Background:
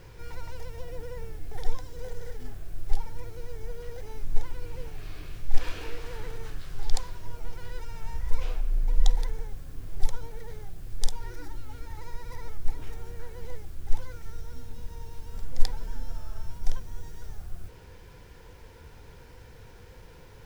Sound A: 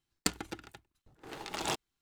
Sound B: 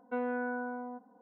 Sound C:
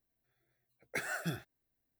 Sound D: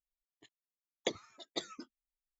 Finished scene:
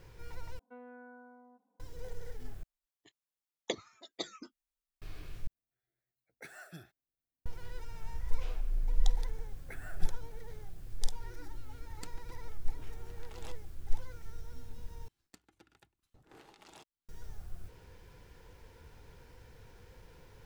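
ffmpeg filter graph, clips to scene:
-filter_complex "[3:a]asplit=2[a][b];[1:a]asplit=2[c][d];[0:a]volume=-6.5dB[e];[b]equalizer=f=5.1k:w=1.5:g=-13.5[f];[d]acompressor=threshold=-49dB:ratio=5:attack=0.22:release=595:knee=1:detection=peak[g];[e]asplit=5[h][i][j][k][l];[h]atrim=end=0.594[m];[2:a]atrim=end=1.21,asetpts=PTS-STARTPTS,volume=-17.5dB[n];[i]atrim=start=1.796:end=2.634[o];[4:a]atrim=end=2.39,asetpts=PTS-STARTPTS,volume=-1dB[p];[j]atrim=start=5.016:end=5.474[q];[a]atrim=end=1.99,asetpts=PTS-STARTPTS,volume=-12.5dB[r];[k]atrim=start=7.456:end=15.084[s];[g]atrim=end=2.01,asetpts=PTS-STARTPTS,volume=-0.5dB[t];[l]atrim=start=17.086[u];[f]atrim=end=1.99,asetpts=PTS-STARTPTS,volume=-11dB,afade=t=in:d=0.004:c=hsin,afade=t=out:st=1.986:d=0.004:c=hsin,adelay=8750[v];[c]atrim=end=2.01,asetpts=PTS-STARTPTS,volume=-18dB,afade=t=in:d=0.004:c=hsin,afade=t=out:st=2.006:d=0.004:c=hsin,adelay=11770[w];[m][n]acrossfade=d=0.004:c1=hsin:c2=hsin[x];[x][o]acrossfade=d=0.004:c1=hsin:c2=hsin[y];[y][p]acrossfade=d=0.004:c1=hsin:c2=hsin[z];[z][q]acrossfade=d=0.004:c1=hsin:c2=hsin[aa];[aa][r]acrossfade=d=0.004:c1=hsin:c2=hsin[ab];[ab][s]acrossfade=d=0.004:c1=hsin:c2=hsin[ac];[ac][t]acrossfade=d=0.004:c1=hsin:c2=hsin[ad];[ad][u]acrossfade=d=0.004:c1=hsin:c2=hsin[ae];[ae][v][w]amix=inputs=3:normalize=0"

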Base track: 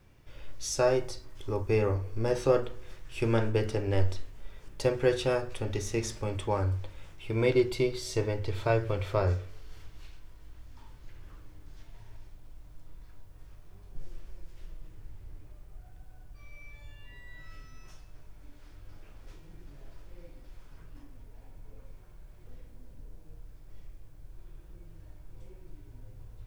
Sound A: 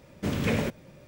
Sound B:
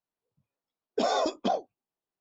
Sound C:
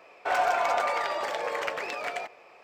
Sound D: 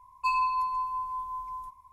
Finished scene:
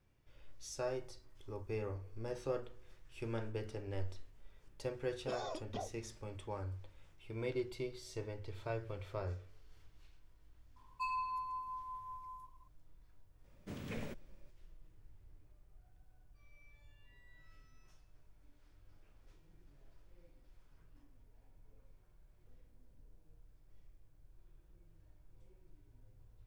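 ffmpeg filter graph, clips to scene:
-filter_complex "[0:a]volume=-14dB[a];[2:a]atrim=end=2.2,asetpts=PTS-STARTPTS,volume=-16.5dB,afade=t=in:d=0.004:c=hsin,afade=t=out:st=2.196:d=0.004:c=hsin,adelay=189189S[b];[4:a]atrim=end=1.92,asetpts=PTS-STARTPTS,volume=-12dB,afade=t=in:d=0.004:c=hsin,afade=t=out:st=1.916:d=0.004:c=hsin,adelay=10760[c];[1:a]atrim=end=1.07,asetpts=PTS-STARTPTS,volume=-17.5dB,afade=t=in:d=0.004:c=hsin,afade=t=out:st=1.066:d=0.004:c=hsin,adelay=13440[d];[a][b][c][d]amix=inputs=4:normalize=0"

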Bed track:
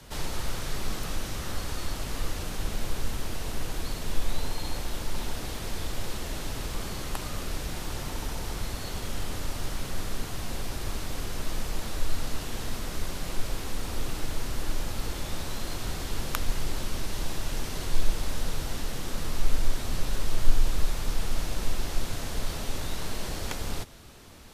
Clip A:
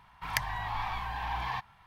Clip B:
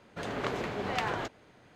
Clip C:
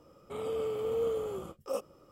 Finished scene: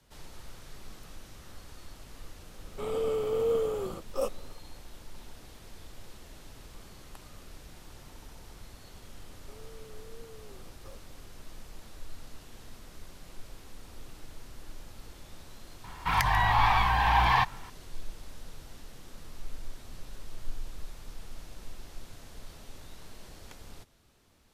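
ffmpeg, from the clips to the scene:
-filter_complex "[3:a]asplit=2[a][b];[0:a]volume=-15.5dB[c];[a]dynaudnorm=f=160:g=3:m=6dB[d];[b]acompressor=threshold=-40dB:ratio=6:attack=3.2:release=140:knee=1:detection=peak[e];[1:a]alimiter=level_in=19.5dB:limit=-1dB:release=50:level=0:latency=1[f];[d]atrim=end=2.11,asetpts=PTS-STARTPTS,volume=-2.5dB,afade=t=in:d=0.004:c=hsin,afade=t=out:st=2.106:d=0.004:c=hsin,adelay=2480[g];[e]atrim=end=2.11,asetpts=PTS-STARTPTS,volume=-9.5dB,afade=t=in:d=0.004:c=hsin,afade=t=out:st=2.106:d=0.004:c=hsin,adelay=9180[h];[f]atrim=end=1.86,asetpts=PTS-STARTPTS,volume=-8.5dB,afade=t=in:d=0.004:c=hsin,afade=t=out:st=1.856:d=0.004:c=hsin,adelay=15840[i];[c][g][h][i]amix=inputs=4:normalize=0"

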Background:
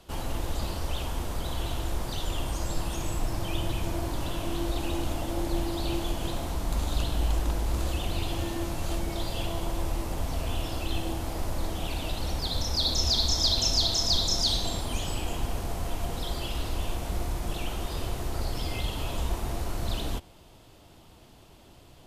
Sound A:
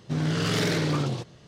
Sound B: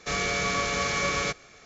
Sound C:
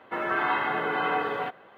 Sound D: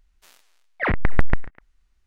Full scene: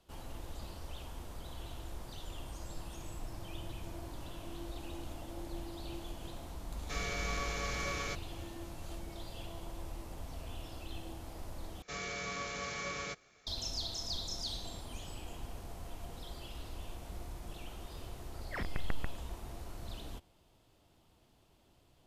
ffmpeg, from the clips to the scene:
-filter_complex "[2:a]asplit=2[a][b];[0:a]volume=-14dB,asplit=2[c][d];[c]atrim=end=11.824[e];[b]atrim=end=1.65,asetpts=PTS-STARTPTS,volume=-13dB[f];[d]atrim=start=13.466[g];[a]atrim=end=1.65,asetpts=PTS-STARTPTS,volume=-11.5dB,afade=t=in:d=0.004:c=hsin,afade=t=out:st=1.646:d=0.004:c=hsin,adelay=6830[h];[4:a]atrim=end=2.06,asetpts=PTS-STARTPTS,volume=-18dB,afade=t=in:d=0.004:c=hsin,afade=t=out:st=2.056:d=0.004:c=hsin,adelay=17710[i];[e][f]acrossfade=d=0.004:c1=hsin:c2=hsin[j];[j][g]acrossfade=d=0.004:c1=hsin:c2=hsin[k];[k][h][i]amix=inputs=3:normalize=0"

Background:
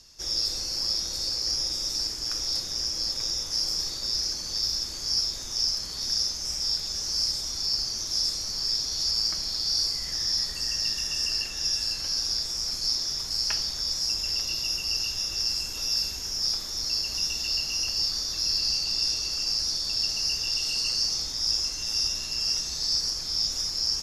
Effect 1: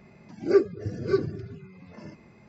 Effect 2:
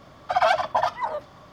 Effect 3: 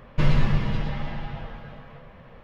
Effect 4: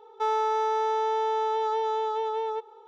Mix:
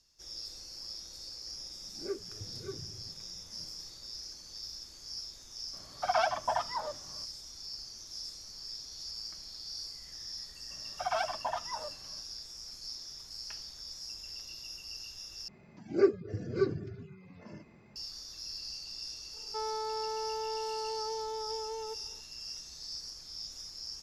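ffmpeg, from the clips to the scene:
-filter_complex "[1:a]asplit=2[a][b];[2:a]asplit=2[c][d];[0:a]volume=-16dB[e];[a]asubboost=boost=7:cutoff=120[f];[c]highshelf=f=6.4k:g=-7[g];[4:a]equalizer=f=190:w=1.1:g=14.5[h];[e]asplit=2[i][j];[i]atrim=end=15.484[k];[b]atrim=end=2.48,asetpts=PTS-STARTPTS,volume=-5dB[l];[j]atrim=start=17.956[m];[f]atrim=end=2.48,asetpts=PTS-STARTPTS,volume=-17.5dB,afade=t=in:d=0.004:c=hsin,afade=t=out:st=2.476:d=0.004:c=hsin,adelay=1550[n];[g]atrim=end=1.52,asetpts=PTS-STARTPTS,volume=-8.5dB,afade=t=in:d=0.004:c=hsin,afade=t=out:st=1.516:d=0.004:c=hsin,adelay=252693S[o];[d]atrim=end=1.52,asetpts=PTS-STARTPTS,volume=-12.5dB,afade=t=in:d=0.004:c=hsin,afade=t=out:st=1.516:d=0.004:c=hsin,adelay=10700[p];[h]atrim=end=2.87,asetpts=PTS-STARTPTS,volume=-12.5dB,afade=t=in:d=0.004:c=hsin,afade=t=out:st=2.866:d=0.004:c=hsin,adelay=19340[q];[k][l]acrossfade=d=0.004:c1=hsin:c2=hsin[r];[r][m]acrossfade=d=0.004:c1=hsin:c2=hsin[s];[s][n][o][p][q]amix=inputs=5:normalize=0"

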